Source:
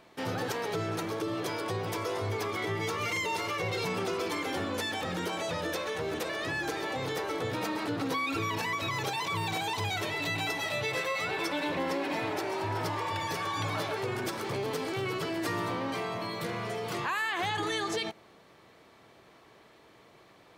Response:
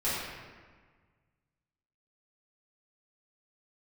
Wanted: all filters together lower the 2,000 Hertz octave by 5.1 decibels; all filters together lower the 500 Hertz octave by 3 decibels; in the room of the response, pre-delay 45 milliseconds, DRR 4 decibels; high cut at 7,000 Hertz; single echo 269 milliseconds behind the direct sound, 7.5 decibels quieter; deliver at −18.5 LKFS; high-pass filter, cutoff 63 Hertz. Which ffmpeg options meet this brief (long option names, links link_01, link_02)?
-filter_complex "[0:a]highpass=63,lowpass=7000,equalizer=frequency=500:width_type=o:gain=-3.5,equalizer=frequency=2000:width_type=o:gain=-6,aecho=1:1:269:0.422,asplit=2[link_01][link_02];[1:a]atrim=start_sample=2205,adelay=45[link_03];[link_02][link_03]afir=irnorm=-1:irlink=0,volume=-13.5dB[link_04];[link_01][link_04]amix=inputs=2:normalize=0,volume=14.5dB"